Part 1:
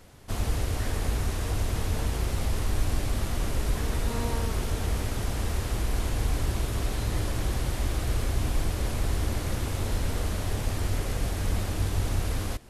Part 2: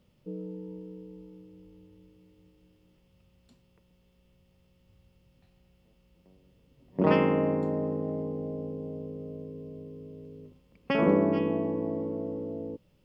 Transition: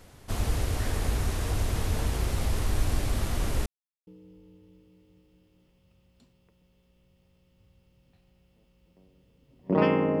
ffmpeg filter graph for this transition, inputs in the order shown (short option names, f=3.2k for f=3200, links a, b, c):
-filter_complex "[0:a]apad=whole_dur=10.2,atrim=end=10.2,asplit=2[a][b];[a]atrim=end=3.66,asetpts=PTS-STARTPTS,afade=t=out:st=3.656:d=0.004:c=hsin[c];[b]atrim=start=3.66:end=4.07,asetpts=PTS-STARTPTS,volume=0[d];[1:a]atrim=start=1.36:end=7.49,asetpts=PTS-STARTPTS,afade=t=in:d=0.004:c=hsin[e];[c][d][e]concat=n=3:v=0:a=1"